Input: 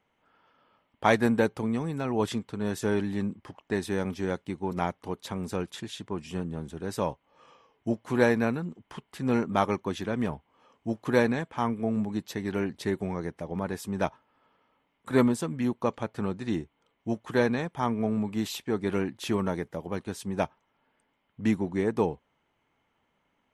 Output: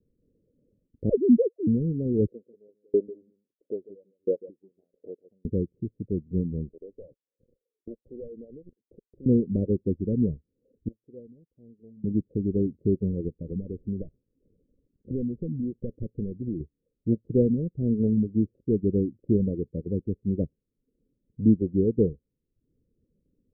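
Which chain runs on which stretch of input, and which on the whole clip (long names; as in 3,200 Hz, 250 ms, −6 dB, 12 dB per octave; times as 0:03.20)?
0:01.09–0:01.67: three sine waves on the formant tracks + gain into a clipping stage and back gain 16.5 dB
0:02.27–0:05.45: auto-filter high-pass saw up 1.5 Hz 420–3,900 Hz + single-tap delay 143 ms −11.5 dB
0:06.69–0:09.26: high-pass filter 780 Hz + leveller curve on the samples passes 3 + downward compressor 3 to 1, threshold −40 dBFS
0:10.88–0:12.04: first-order pre-emphasis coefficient 0.97 + upward compression, threshold −56 dBFS
0:13.28–0:16.60: variable-slope delta modulation 16 kbit/s + downward compressor 4 to 1, threshold −32 dBFS
whole clip: Butterworth low-pass 520 Hz 72 dB per octave; reverb reduction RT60 0.59 s; spectral tilt −3 dB per octave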